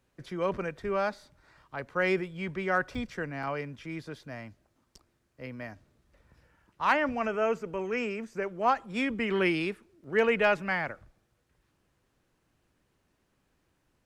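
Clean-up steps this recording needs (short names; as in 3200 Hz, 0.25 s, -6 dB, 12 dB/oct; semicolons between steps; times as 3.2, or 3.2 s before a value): clip repair -15 dBFS; interpolate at 2.95/3.43/4.69/10.04, 2.8 ms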